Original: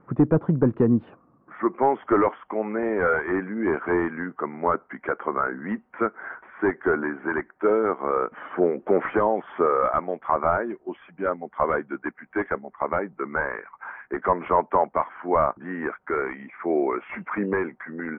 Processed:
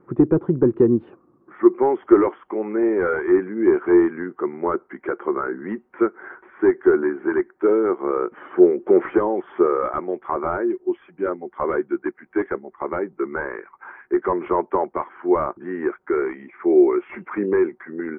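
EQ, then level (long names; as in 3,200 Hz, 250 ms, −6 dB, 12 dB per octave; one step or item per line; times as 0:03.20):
parametric band 360 Hz +14.5 dB 0.4 octaves
notch filter 660 Hz, Q 12
−2.5 dB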